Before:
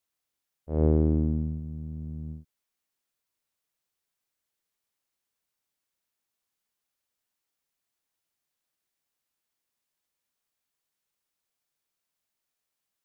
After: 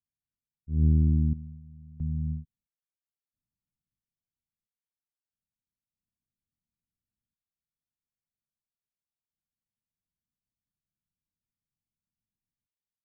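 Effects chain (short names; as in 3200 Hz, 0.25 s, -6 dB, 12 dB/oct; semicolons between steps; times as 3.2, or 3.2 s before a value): inverse Chebyshev low-pass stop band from 980 Hz, stop band 70 dB; random-step tremolo 1.5 Hz, depth 90%; gain +9 dB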